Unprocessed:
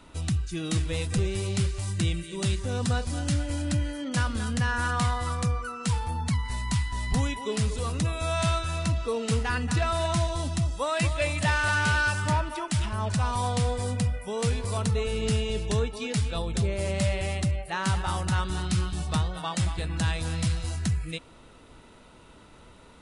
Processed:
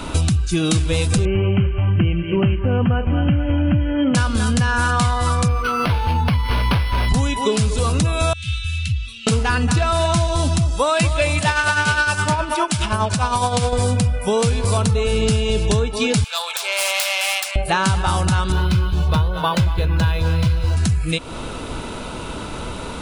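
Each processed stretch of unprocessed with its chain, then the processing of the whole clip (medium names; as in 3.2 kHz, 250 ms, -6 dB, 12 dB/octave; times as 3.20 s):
1.25–4.15 s: brick-wall FIR low-pass 3.2 kHz + peaking EQ 210 Hz +4 dB 2.8 oct + delay 381 ms -21.5 dB
5.48–7.09 s: treble shelf 4.2 kHz +10.5 dB + decimation joined by straight lines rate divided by 6×
8.33–9.27 s: elliptic band-stop 110–3000 Hz, stop band 60 dB + three-band isolator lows -15 dB, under 270 Hz, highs -22 dB, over 2.3 kHz
11.39–13.73 s: bass shelf 130 Hz -9 dB + tremolo 9.7 Hz, depth 58%
16.24–17.56 s: self-modulated delay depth 0.11 ms + Bessel high-pass 1.2 kHz, order 6
18.52–20.77 s: distance through air 130 m + comb 2 ms, depth 49% + decimation joined by straight lines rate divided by 3×
whole clip: band-stop 1.9 kHz, Q 7.7; compression 6:1, threshold -39 dBFS; loudness maximiser +28 dB; trim -5 dB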